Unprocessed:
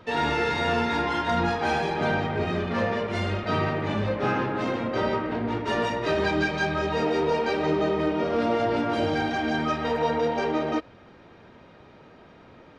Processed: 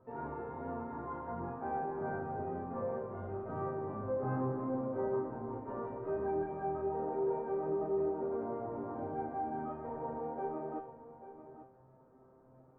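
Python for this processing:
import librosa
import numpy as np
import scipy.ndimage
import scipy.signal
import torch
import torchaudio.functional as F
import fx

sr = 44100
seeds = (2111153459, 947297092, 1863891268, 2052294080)

y = scipy.signal.sosfilt(scipy.signal.butter(4, 1100.0, 'lowpass', fs=sr, output='sos'), x)
y = fx.comb_fb(y, sr, f0_hz=130.0, decay_s=0.52, harmonics='all', damping=0.0, mix_pct=90)
y = y + 10.0 ** (-13.0 / 20.0) * np.pad(y, (int(839 * sr / 1000.0), 0))[:len(y)]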